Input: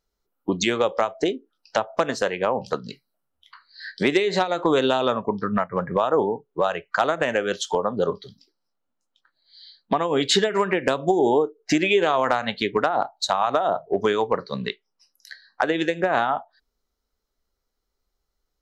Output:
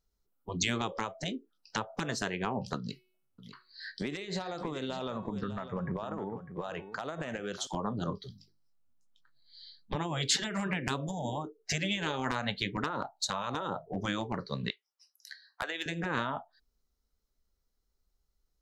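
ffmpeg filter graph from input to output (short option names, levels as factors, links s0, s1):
-filter_complex "[0:a]asettb=1/sr,asplit=3[s0][s1][s2];[s0]atrim=end=2.784[s3];[s1]atrim=start=2.78:end=7.67,asetpts=PTS-STARTPTS,afade=t=in:d=0.004:c=qsin,afade=t=out:st=4.886:d=0.004:c=qsin,bandreject=f=369.3:t=h:w=4,bandreject=f=738.6:t=h:w=4,bandreject=f=1107.9:t=h:w=4,bandreject=f=1477.2:t=h:w=4,bandreject=f=1846.5:t=h:w=4,bandreject=f=2215.8:t=h:w=4,bandreject=f=2585.1:t=h:w=4,bandreject=f=2954.4:t=h:w=4,bandreject=f=3323.7:t=h:w=4,bandreject=f=3693:t=h:w=4,acompressor=threshold=0.0501:ratio=6:attack=3.2:release=140:knee=1:detection=peak,aecho=1:1:602:0.251,atrim=end_sample=215649[s4];[s2]atrim=start=7.666[s5];[s3][s4]acrossfade=d=0.004:c1=hsin:c2=qsin[s6];[s6][s5]acrossfade=d=0.004:c1=qsin:c2=hsin,asettb=1/sr,asplit=3[s7][s8][s9];[s7]atrim=end=8.184[s10];[s8]atrim=start=8.18:end=9.96,asetpts=PTS-STARTPTS,afade=t=in:d=0.004:c=qsin,afade=t=out:st=1.776:d=0.004:c=qsin,bandreject=f=50:t=h:w=6,bandreject=f=100:t=h:w=6,bandreject=f=150:t=h:w=6,bandreject=f=200:t=h:w=6,bandreject=f=250:t=h:w=6,bandreject=f=300:t=h:w=6,bandreject=f=350:t=h:w=6,asubboost=boost=8.5:cutoff=200[s11];[s9]atrim=start=9.956[s12];[s10][s11]acrossfade=d=0.004:c1=hsin:c2=qsin[s13];[s13][s12]acrossfade=d=0.004:c1=qsin:c2=hsin,asettb=1/sr,asplit=3[s14][s15][s16];[s14]atrim=end=14.704[s17];[s15]atrim=start=14.7:end=15.86,asetpts=PTS-STARTPTS,afade=t=in:d=0.004:c=qsin,afade=t=out:st=1.156:d=0.004:c=qsin,highpass=840,asoftclip=type=hard:threshold=0.188[s18];[s16]atrim=start=15.856[s19];[s17][s18]acrossfade=d=0.004:c1=hsin:c2=qsin[s20];[s20][s19]acrossfade=d=0.004:c1=qsin:c2=hsin,afftfilt=real='re*lt(hypot(re,im),0.355)':imag='im*lt(hypot(re,im),0.355)':win_size=1024:overlap=0.75,bass=f=250:g=9,treble=f=4000:g=5,volume=0.422"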